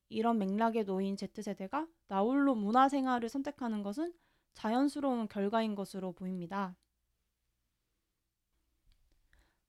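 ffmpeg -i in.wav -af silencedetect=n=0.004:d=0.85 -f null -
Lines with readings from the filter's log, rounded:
silence_start: 6.73
silence_end: 9.69 | silence_duration: 2.96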